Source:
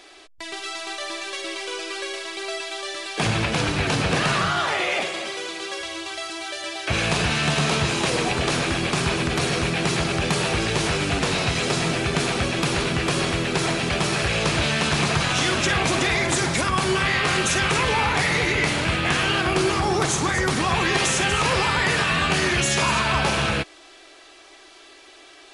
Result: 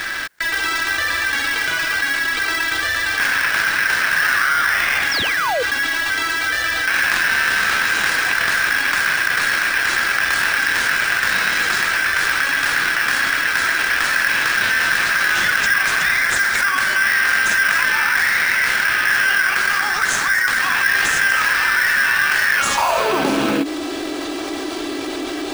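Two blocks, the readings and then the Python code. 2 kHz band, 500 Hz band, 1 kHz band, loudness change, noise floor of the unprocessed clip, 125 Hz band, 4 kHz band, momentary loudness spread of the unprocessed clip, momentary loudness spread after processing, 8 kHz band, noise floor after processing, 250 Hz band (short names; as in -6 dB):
+11.0 dB, -3.5 dB, +3.0 dB, +5.5 dB, -48 dBFS, -15.0 dB, +2.0 dB, 10 LU, 4 LU, +2.0 dB, -25 dBFS, -2.5 dB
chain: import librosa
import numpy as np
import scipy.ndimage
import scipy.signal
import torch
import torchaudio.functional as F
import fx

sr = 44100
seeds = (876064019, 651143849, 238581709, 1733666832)

p1 = fx.filter_sweep_highpass(x, sr, from_hz=1600.0, to_hz=280.0, start_s=22.57, end_s=23.25, q=7.8)
p2 = fx.spec_paint(p1, sr, seeds[0], shape='fall', start_s=5.11, length_s=0.52, low_hz=450.0, high_hz=5900.0, level_db=-24.0)
p3 = fx.sample_hold(p2, sr, seeds[1], rate_hz=3600.0, jitter_pct=0)
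p4 = p2 + (p3 * librosa.db_to_amplitude(-6.0))
p5 = fx.env_flatten(p4, sr, amount_pct=70)
y = p5 * librosa.db_to_amplitude(-9.0)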